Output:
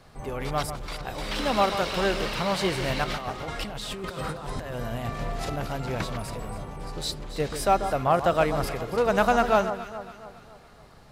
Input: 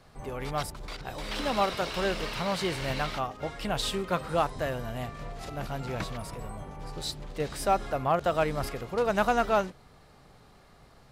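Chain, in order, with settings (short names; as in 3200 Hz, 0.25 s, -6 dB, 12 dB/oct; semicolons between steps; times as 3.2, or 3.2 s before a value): 3.04–5.56 negative-ratio compressor -37 dBFS, ratio -1; echo with dull and thin repeats by turns 0.139 s, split 1400 Hz, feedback 67%, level -9.5 dB; gain +3.5 dB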